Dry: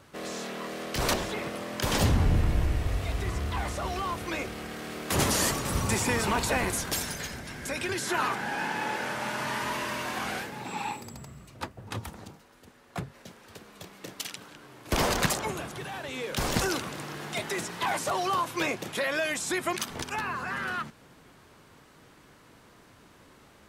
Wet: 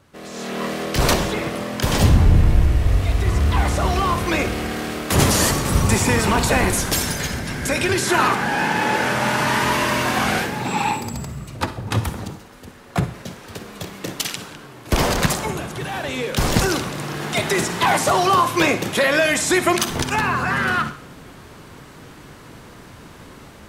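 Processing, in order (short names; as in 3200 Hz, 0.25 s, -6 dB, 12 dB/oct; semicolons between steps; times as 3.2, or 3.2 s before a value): low shelf 220 Hz +5.5 dB; AGC gain up to 14.5 dB; on a send: reverb RT60 0.55 s, pre-delay 43 ms, DRR 10.5 dB; on the sum: gain -2.5 dB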